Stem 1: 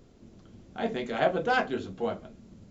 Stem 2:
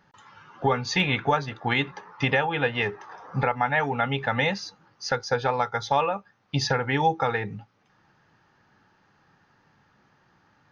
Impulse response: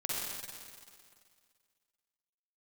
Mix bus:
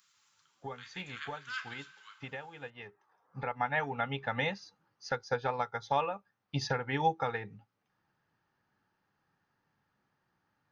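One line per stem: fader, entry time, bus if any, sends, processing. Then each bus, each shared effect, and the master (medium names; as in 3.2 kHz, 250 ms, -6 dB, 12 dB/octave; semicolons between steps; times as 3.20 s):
-3.5 dB, 0.00 s, send -21.5 dB, steep high-pass 1.1 kHz 72 dB/octave; treble shelf 3.7 kHz +8.5 dB; auto duck -9 dB, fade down 0.40 s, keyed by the second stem
3.28 s -18 dB -> 3.56 s -5.5 dB, 0.00 s, no send, upward expansion 1.5:1, over -38 dBFS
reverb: on, RT60 2.1 s, pre-delay 43 ms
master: none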